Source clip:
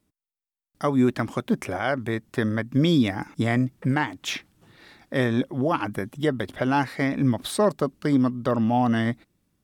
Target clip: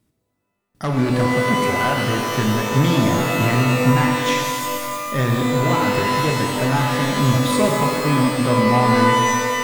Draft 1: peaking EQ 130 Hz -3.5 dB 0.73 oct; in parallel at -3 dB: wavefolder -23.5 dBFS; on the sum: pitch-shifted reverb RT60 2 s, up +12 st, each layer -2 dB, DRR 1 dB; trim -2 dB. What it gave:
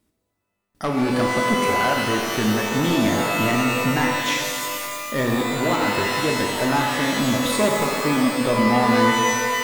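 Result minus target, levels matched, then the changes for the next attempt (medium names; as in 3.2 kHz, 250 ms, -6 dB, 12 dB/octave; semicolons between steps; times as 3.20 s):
125 Hz band -7.0 dB
change: peaking EQ 130 Hz +8.5 dB 0.73 oct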